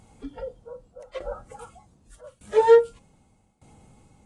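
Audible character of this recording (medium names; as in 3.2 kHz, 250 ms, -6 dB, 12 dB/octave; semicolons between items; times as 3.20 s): a quantiser's noise floor 12-bit, dither triangular; tremolo saw down 0.83 Hz, depth 90%; AAC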